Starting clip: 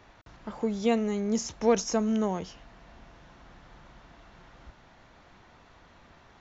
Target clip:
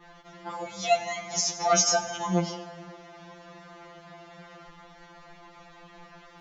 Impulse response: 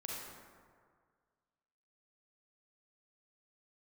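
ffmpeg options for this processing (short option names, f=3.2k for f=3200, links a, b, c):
-filter_complex "[0:a]adynamicequalizer=threshold=0.00251:dfrequency=5200:dqfactor=1.4:tfrequency=5200:tqfactor=1.4:attack=5:release=100:ratio=0.375:range=3.5:mode=boostabove:tftype=bell,asplit=2[a][b];[1:a]atrim=start_sample=2205,asetrate=43659,aresample=44100,lowshelf=f=220:g=-9[c];[b][c]afir=irnorm=-1:irlink=0,volume=-5dB[d];[a][d]amix=inputs=2:normalize=0,afftfilt=real='re*2.83*eq(mod(b,8),0)':imag='im*2.83*eq(mod(b,8),0)':win_size=2048:overlap=0.75,volume=5.5dB"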